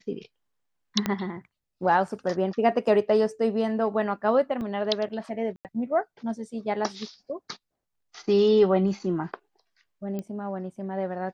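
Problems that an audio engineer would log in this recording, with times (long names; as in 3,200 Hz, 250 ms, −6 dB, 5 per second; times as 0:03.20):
0:01.06: click −11 dBFS
0:04.61: drop-out 3 ms
0:05.56–0:05.65: drop-out 88 ms
0:10.19: click −21 dBFS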